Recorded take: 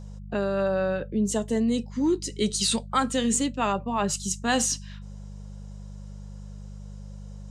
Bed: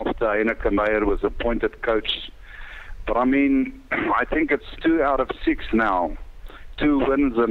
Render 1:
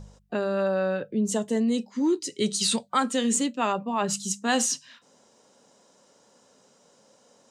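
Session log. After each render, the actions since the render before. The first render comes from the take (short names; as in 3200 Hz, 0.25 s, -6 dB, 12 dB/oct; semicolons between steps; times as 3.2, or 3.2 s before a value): de-hum 50 Hz, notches 4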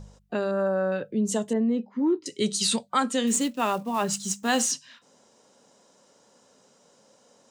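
0.51–0.92 band shelf 3500 Hz -13.5 dB; 1.53–2.26 LPF 1600 Hz; 3.27–4.72 block floating point 5-bit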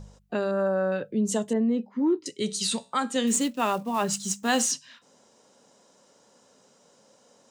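2.31–3.16 resonator 62 Hz, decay 0.38 s, mix 40%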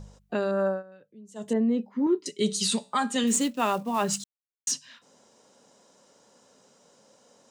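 0.68–1.5 dip -23 dB, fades 0.15 s; 2.06–3.24 comb 4.9 ms, depth 54%; 4.24–4.67 mute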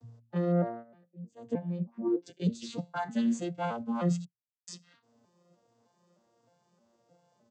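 arpeggiated vocoder bare fifth, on A#2, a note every 0.308 s; endless flanger 3.9 ms -1.4 Hz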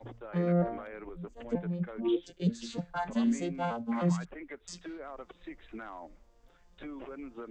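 add bed -24 dB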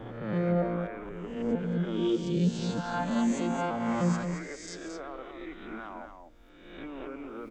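spectral swells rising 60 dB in 1.07 s; on a send: echo 0.222 s -7 dB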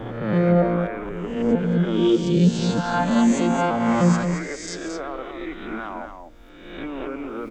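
gain +9.5 dB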